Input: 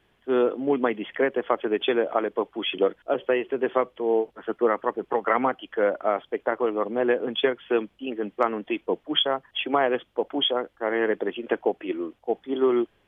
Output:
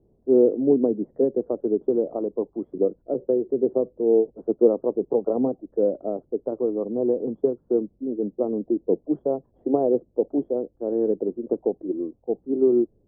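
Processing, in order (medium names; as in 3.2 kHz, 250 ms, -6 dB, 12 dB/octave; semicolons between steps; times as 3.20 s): inverse Chebyshev low-pass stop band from 2.4 kHz, stop band 70 dB; phaser 0.21 Hz, delay 1 ms, feedback 30%; trim +3.5 dB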